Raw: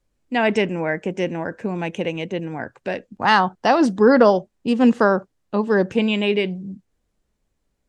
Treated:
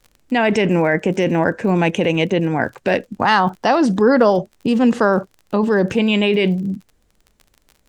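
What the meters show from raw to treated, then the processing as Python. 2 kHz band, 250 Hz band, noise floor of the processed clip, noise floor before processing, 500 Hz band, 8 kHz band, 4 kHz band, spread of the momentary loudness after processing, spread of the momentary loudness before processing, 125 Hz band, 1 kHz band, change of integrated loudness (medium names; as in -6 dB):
+3.0 dB, +3.5 dB, -61 dBFS, -72 dBFS, +2.5 dB, no reading, +3.5 dB, 6 LU, 13 LU, +7.5 dB, +2.0 dB, +2.5 dB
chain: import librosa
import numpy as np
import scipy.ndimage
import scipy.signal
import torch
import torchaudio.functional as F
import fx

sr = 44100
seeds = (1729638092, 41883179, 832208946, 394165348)

p1 = fx.over_compress(x, sr, threshold_db=-25.0, ratio=-1.0)
p2 = x + (p1 * 10.0 ** (3.0 / 20.0))
p3 = fx.dmg_crackle(p2, sr, seeds[0], per_s=44.0, level_db=-32.0)
y = p3 * 10.0 ** (-1.0 / 20.0)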